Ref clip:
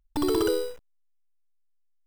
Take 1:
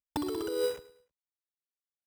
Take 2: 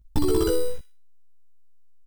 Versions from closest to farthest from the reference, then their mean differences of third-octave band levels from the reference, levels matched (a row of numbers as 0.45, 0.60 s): 2, 1; 3.5, 6.5 dB